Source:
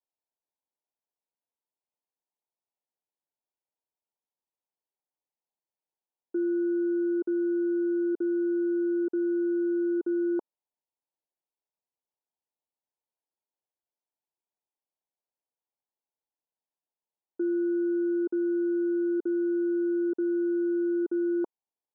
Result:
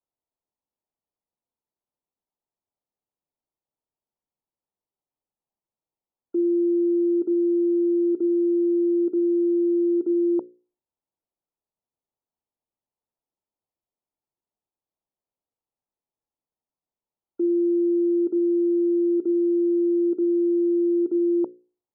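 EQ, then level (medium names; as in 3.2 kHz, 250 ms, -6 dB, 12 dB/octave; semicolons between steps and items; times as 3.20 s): brick-wall FIR low-pass 1.4 kHz; bass shelf 430 Hz +10 dB; hum notches 60/120/180/240/300/360/420/480/540 Hz; 0.0 dB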